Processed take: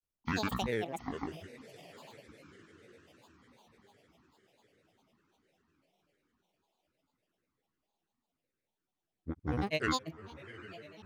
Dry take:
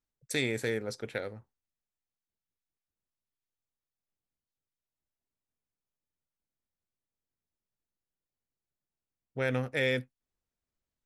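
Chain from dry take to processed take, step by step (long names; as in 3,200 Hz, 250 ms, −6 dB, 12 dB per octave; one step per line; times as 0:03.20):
feedback delay with all-pass diffusion 814 ms, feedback 56%, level −15.5 dB
granular cloud, grains 20 per second, pitch spread up and down by 12 semitones
level −1.5 dB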